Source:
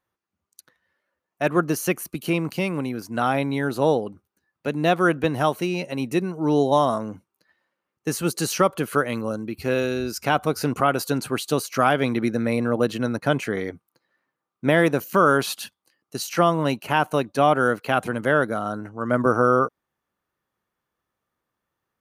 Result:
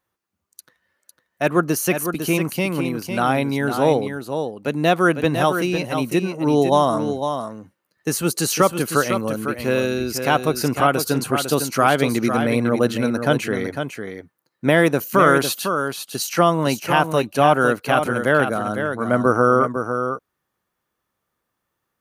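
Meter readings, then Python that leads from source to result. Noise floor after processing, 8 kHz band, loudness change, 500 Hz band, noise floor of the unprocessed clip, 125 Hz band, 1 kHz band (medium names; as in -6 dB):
-78 dBFS, +6.0 dB, +3.0 dB, +3.5 dB, -84 dBFS, +3.5 dB, +3.5 dB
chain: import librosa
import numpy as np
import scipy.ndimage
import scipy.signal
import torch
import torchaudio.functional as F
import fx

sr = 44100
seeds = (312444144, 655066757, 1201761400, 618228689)

y = fx.high_shelf(x, sr, hz=5600.0, db=4.5)
y = y + 10.0 ** (-7.5 / 20.0) * np.pad(y, (int(503 * sr / 1000.0), 0))[:len(y)]
y = F.gain(torch.from_numpy(y), 2.5).numpy()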